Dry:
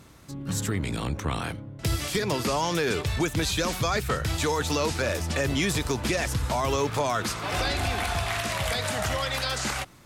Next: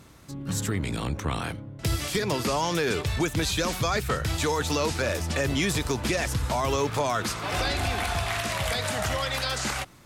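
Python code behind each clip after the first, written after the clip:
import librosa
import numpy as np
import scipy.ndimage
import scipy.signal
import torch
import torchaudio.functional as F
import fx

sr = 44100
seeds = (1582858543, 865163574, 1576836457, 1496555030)

y = x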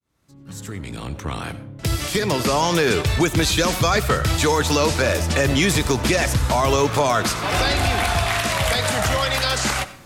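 y = fx.fade_in_head(x, sr, length_s=2.77)
y = fx.rev_freeverb(y, sr, rt60_s=0.46, hf_ratio=0.6, predelay_ms=50, drr_db=15.0)
y = y * 10.0 ** (7.5 / 20.0)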